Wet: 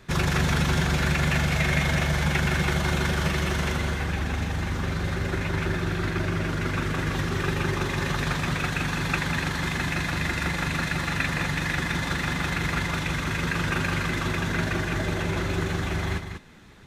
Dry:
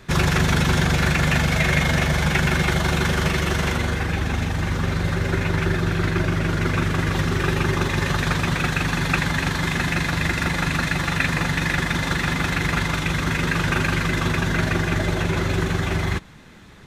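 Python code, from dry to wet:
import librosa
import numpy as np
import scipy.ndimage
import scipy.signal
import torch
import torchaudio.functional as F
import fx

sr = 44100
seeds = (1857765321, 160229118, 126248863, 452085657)

p1 = x + fx.echo_single(x, sr, ms=193, db=-8.0, dry=0)
y = p1 * 10.0 ** (-5.0 / 20.0)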